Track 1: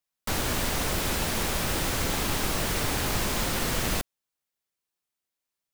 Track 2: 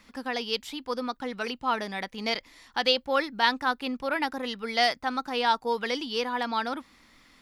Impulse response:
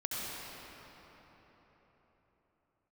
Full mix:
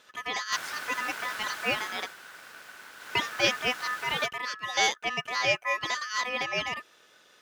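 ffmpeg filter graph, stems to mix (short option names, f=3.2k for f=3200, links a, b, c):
-filter_complex "[0:a]highshelf=f=6.1k:g=-6.5,adelay=250,afade=t=out:st=1.77:d=0.38:silence=0.334965,afade=t=in:st=2.97:d=0.24:silence=0.446684[a];[1:a]volume=2dB,asplit=3[b][c][d];[b]atrim=end=2.07,asetpts=PTS-STARTPTS,afade=t=out:st=2.066:d=0.004:c=hsin[e];[c]atrim=start=2.07:end=3.15,asetpts=PTS-STARTPTS,volume=0[f];[d]atrim=start=3.15,asetpts=PTS-STARTPTS,afade=t=in:d=0.004:c=hsin[g];[e][f][g]concat=n=3:v=0:a=1[h];[a][h]amix=inputs=2:normalize=0,aeval=exprs='val(0)*sin(2*PI*1500*n/s)':c=same,highpass=f=330:p=1"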